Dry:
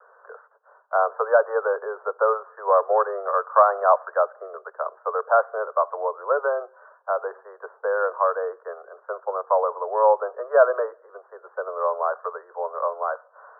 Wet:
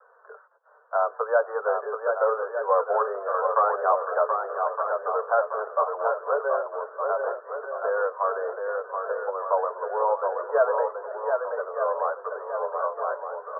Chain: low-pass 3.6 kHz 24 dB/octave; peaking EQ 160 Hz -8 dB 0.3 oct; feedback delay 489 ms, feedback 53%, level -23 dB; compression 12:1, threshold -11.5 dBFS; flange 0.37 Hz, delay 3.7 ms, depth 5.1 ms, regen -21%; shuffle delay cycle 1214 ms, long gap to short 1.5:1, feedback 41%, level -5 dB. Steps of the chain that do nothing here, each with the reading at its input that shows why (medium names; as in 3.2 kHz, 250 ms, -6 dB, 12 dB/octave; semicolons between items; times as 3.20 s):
low-pass 3.6 kHz: input has nothing above 1.7 kHz; peaking EQ 160 Hz: input has nothing below 360 Hz